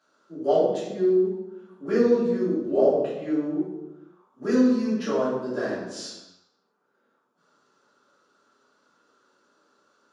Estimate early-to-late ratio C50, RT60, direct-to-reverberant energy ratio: 0.5 dB, 1.0 s, -10.0 dB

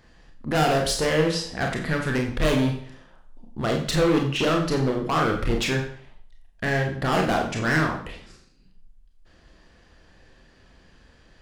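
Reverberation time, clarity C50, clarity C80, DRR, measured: 0.50 s, 7.0 dB, 10.0 dB, 1.0 dB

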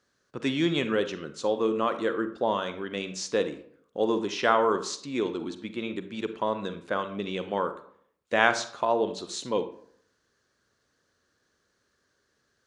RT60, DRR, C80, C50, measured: 0.60 s, 10.0 dB, 15.0 dB, 11.5 dB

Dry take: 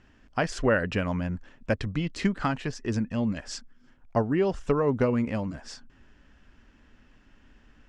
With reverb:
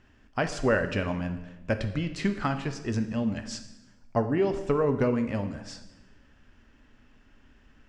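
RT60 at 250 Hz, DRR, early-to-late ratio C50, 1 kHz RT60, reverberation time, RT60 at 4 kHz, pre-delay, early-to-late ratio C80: 1.2 s, 7.5 dB, 10.5 dB, 1.0 s, 1.1 s, 0.90 s, 4 ms, 12.5 dB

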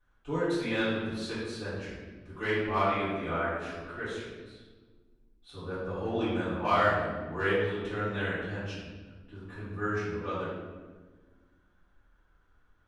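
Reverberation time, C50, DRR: 1.4 s, -1.5 dB, -14.0 dB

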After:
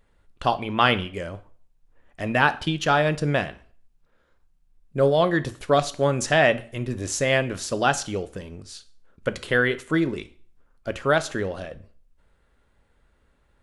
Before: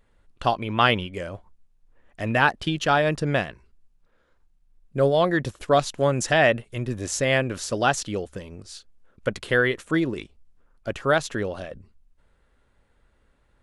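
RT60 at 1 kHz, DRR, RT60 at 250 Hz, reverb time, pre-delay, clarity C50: 0.45 s, 12.0 dB, 0.45 s, 0.45 s, 4 ms, 17.5 dB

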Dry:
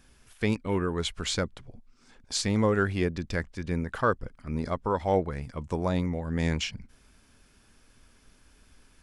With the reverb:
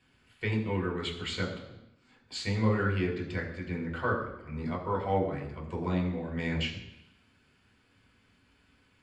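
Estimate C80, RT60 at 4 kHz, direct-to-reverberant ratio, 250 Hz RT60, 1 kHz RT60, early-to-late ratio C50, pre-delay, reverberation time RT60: 9.0 dB, 0.90 s, -2.0 dB, 0.85 s, 0.85 s, 7.0 dB, 3 ms, 0.85 s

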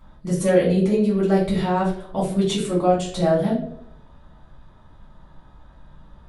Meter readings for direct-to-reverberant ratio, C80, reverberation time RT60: -7.5 dB, 9.0 dB, 0.75 s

